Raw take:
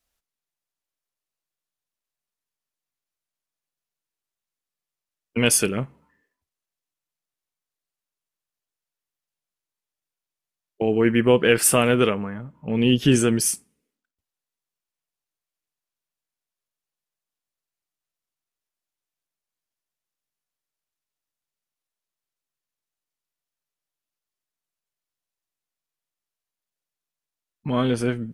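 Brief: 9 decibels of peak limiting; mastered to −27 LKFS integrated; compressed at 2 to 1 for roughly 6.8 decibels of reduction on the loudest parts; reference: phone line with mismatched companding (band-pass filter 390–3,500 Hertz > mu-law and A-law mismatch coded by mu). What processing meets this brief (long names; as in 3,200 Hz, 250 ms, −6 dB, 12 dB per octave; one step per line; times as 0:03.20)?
downward compressor 2 to 1, threshold −25 dBFS
brickwall limiter −19 dBFS
band-pass filter 390–3,500 Hz
mu-law and A-law mismatch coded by mu
level +6.5 dB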